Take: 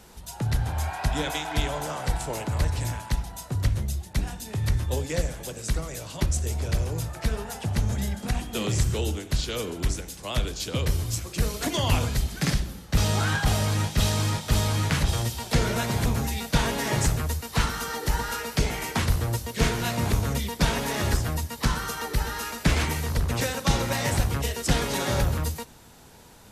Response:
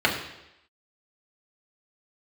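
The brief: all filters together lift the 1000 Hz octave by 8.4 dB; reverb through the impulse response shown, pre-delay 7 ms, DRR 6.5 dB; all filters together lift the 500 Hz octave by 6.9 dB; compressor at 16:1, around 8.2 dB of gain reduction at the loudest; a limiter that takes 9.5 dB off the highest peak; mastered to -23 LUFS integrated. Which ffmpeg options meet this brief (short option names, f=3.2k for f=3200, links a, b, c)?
-filter_complex "[0:a]equalizer=f=500:t=o:g=6,equalizer=f=1k:t=o:g=8.5,acompressor=threshold=-23dB:ratio=16,alimiter=limit=-21.5dB:level=0:latency=1,asplit=2[a][b];[1:a]atrim=start_sample=2205,adelay=7[c];[b][c]afir=irnorm=-1:irlink=0,volume=-23.5dB[d];[a][d]amix=inputs=2:normalize=0,volume=7.5dB"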